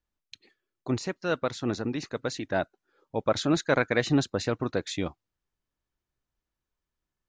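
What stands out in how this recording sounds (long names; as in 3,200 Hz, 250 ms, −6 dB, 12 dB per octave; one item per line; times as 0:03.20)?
background noise floor −88 dBFS
spectral slope −5.0 dB per octave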